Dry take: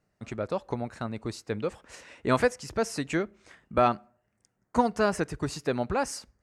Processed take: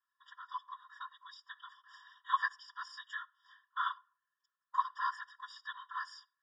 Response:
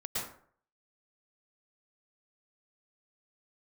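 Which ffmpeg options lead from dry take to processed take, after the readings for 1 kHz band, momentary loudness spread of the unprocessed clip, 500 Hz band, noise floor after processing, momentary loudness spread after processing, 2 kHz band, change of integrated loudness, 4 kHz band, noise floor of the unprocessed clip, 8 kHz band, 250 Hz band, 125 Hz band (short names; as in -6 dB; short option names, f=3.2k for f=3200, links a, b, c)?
-6.5 dB, 12 LU, under -40 dB, under -85 dBFS, 19 LU, -5.5 dB, -10.0 dB, -7.5 dB, -77 dBFS, under -25 dB, under -40 dB, under -40 dB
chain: -filter_complex "[0:a]asplit=2[a][b];[1:a]atrim=start_sample=2205,asetrate=83790,aresample=44100[c];[b][c]afir=irnorm=-1:irlink=0,volume=-24dB[d];[a][d]amix=inputs=2:normalize=0,afftfilt=real='hypot(re,im)*cos(PI*b)':imag='0':win_size=512:overlap=0.75,highpass=f=220:w=0.5412,highpass=f=220:w=1.3066,equalizer=f=270:t=q:w=4:g=7,equalizer=f=850:t=q:w=4:g=3,equalizer=f=1.4k:t=q:w=4:g=-9,equalizer=f=2.7k:t=q:w=4:g=-6,lowpass=f=4.2k:w=0.5412,lowpass=f=4.2k:w=1.3066,afftfilt=real='hypot(re,im)*cos(2*PI*random(0))':imag='hypot(re,im)*sin(2*PI*random(1))':win_size=512:overlap=0.75,afftfilt=real='re*eq(mod(floor(b*sr/1024/950),2),1)':imag='im*eq(mod(floor(b*sr/1024/950),2),1)':win_size=1024:overlap=0.75,volume=9dB"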